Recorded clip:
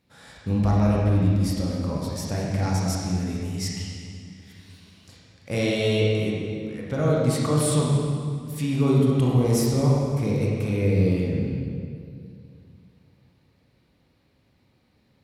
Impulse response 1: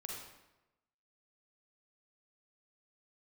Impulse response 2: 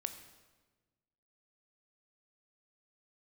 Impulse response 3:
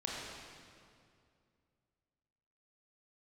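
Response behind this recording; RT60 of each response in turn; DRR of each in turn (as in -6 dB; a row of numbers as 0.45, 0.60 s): 3; 1.0, 1.3, 2.3 s; -2.0, 8.0, -4.5 dB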